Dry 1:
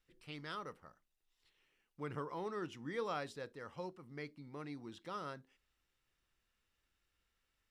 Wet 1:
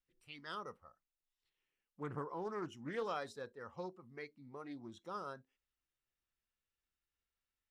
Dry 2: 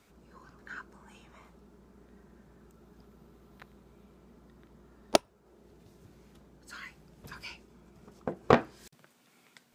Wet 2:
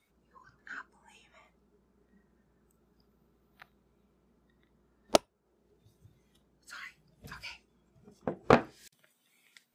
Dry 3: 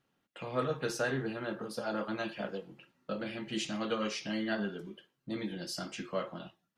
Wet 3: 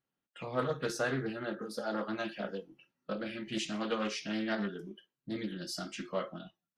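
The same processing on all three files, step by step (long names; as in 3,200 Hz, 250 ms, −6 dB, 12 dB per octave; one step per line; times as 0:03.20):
noise reduction from a noise print of the clip's start 12 dB
highs frequency-modulated by the lows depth 0.23 ms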